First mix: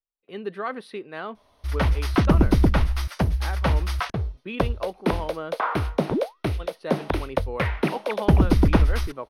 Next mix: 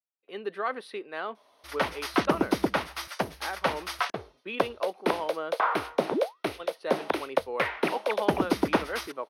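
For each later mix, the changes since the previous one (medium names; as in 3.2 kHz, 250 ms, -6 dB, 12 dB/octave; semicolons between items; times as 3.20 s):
master: add high-pass 360 Hz 12 dB/octave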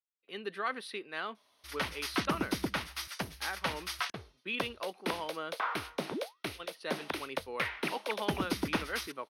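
speech +4.5 dB; master: add peaking EQ 590 Hz -12.5 dB 2.6 oct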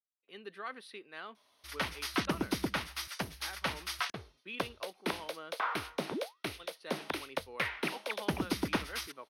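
speech -7.5 dB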